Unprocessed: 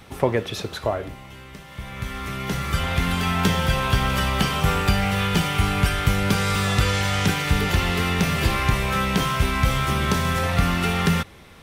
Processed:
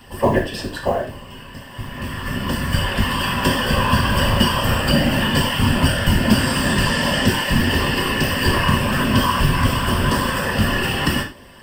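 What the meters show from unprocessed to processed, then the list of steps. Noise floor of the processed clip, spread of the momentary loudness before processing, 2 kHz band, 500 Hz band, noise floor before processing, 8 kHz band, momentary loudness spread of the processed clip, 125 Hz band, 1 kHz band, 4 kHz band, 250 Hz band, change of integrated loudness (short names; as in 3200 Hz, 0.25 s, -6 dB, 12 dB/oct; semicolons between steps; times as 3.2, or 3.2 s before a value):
-38 dBFS, 10 LU, +4.0 dB, +4.0 dB, -43 dBFS, +3.0 dB, 10 LU, +2.0 dB, +3.0 dB, +5.5 dB, +5.5 dB, +3.5 dB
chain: ripple EQ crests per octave 1.3, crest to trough 16 dB; whisperiser; short-mantissa float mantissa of 4-bit; non-linear reverb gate 0.13 s falling, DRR 1 dB; gain -1.5 dB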